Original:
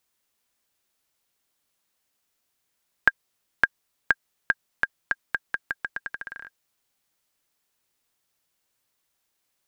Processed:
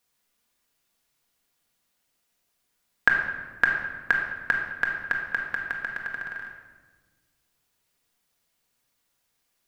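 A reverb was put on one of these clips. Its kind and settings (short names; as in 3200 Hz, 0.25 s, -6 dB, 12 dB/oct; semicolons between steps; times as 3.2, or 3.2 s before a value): shoebox room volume 1100 m³, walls mixed, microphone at 1.8 m; gain -1 dB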